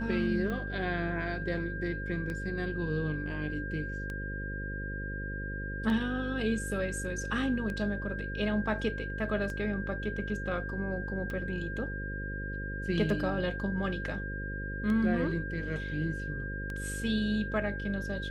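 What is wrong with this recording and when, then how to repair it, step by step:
buzz 50 Hz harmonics 11 -38 dBFS
tick 33 1/3 rpm -25 dBFS
whine 1.6 kHz -39 dBFS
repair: de-click; band-stop 1.6 kHz, Q 30; de-hum 50 Hz, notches 11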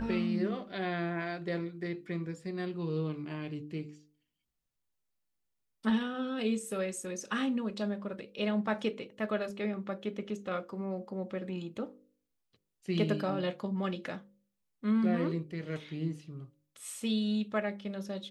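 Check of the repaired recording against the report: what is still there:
nothing left

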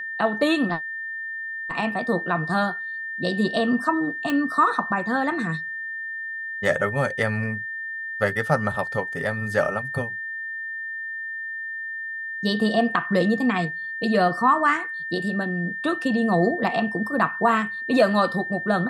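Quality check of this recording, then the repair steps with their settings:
whine 1.8 kHz -29 dBFS
4.30 s: pop -12 dBFS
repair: de-click; band-stop 1.8 kHz, Q 30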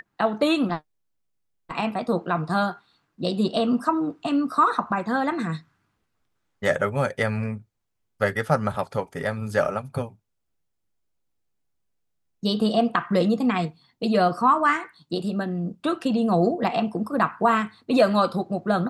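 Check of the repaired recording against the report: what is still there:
nothing left

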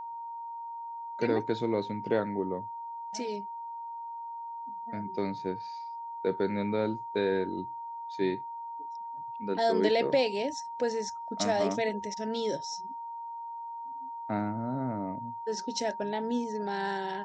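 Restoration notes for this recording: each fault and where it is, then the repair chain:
whine 930 Hz -37 dBFS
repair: band-stop 930 Hz, Q 30

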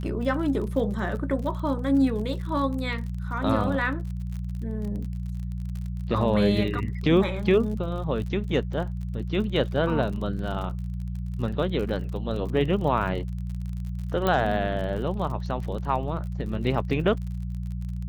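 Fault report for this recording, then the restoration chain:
crackle 42 per s -34 dBFS
hum 60 Hz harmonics 3 -31 dBFS
14.27 s: pop -12 dBFS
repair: de-click; de-hum 60 Hz, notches 3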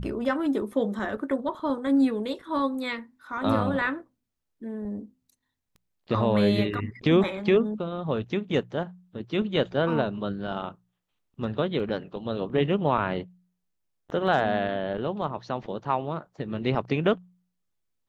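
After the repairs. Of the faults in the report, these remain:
14.27 s: pop

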